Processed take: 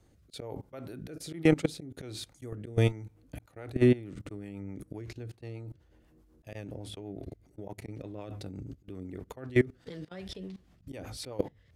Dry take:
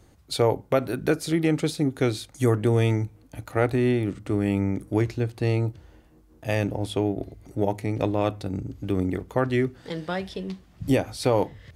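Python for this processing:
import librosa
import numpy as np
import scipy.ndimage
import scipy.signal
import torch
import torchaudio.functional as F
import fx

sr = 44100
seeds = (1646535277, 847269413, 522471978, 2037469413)

y = fx.auto_swell(x, sr, attack_ms=144.0)
y = fx.level_steps(y, sr, step_db=21)
y = fx.rotary_switch(y, sr, hz=1.2, then_hz=8.0, switch_at_s=3.02)
y = F.gain(torch.from_numpy(y), 2.5).numpy()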